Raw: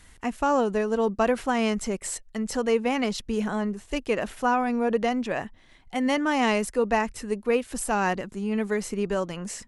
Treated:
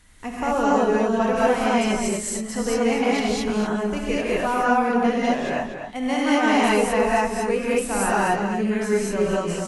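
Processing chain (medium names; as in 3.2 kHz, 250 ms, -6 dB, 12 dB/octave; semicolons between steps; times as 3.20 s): echo from a far wall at 42 m, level -7 dB; gated-style reverb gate 250 ms rising, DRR -7 dB; trim -3.5 dB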